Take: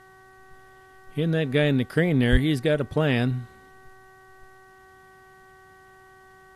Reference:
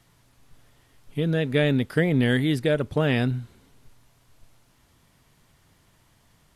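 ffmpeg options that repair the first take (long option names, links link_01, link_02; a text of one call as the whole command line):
ffmpeg -i in.wav -filter_complex "[0:a]bandreject=frequency=378.9:width_type=h:width=4,bandreject=frequency=757.8:width_type=h:width=4,bandreject=frequency=1136.7:width_type=h:width=4,bandreject=frequency=1515.6:width_type=h:width=4,bandreject=frequency=1894.5:width_type=h:width=4,asplit=3[link_01][link_02][link_03];[link_01]afade=type=out:start_time=2.31:duration=0.02[link_04];[link_02]highpass=frequency=140:width=0.5412,highpass=frequency=140:width=1.3066,afade=type=in:start_time=2.31:duration=0.02,afade=type=out:start_time=2.43:duration=0.02[link_05];[link_03]afade=type=in:start_time=2.43:duration=0.02[link_06];[link_04][link_05][link_06]amix=inputs=3:normalize=0" out.wav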